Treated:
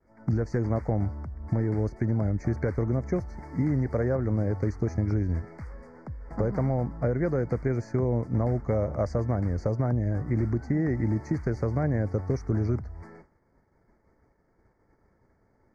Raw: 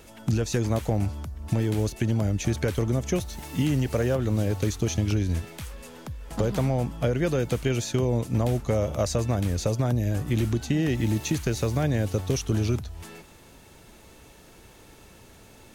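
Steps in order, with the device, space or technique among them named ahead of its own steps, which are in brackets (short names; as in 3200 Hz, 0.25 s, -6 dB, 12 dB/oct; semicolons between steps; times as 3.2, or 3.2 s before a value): elliptic band-stop 2100–4700 Hz, stop band 40 dB; hearing-loss simulation (LPF 2200 Hz 12 dB/oct; expander -42 dBFS); gain -1.5 dB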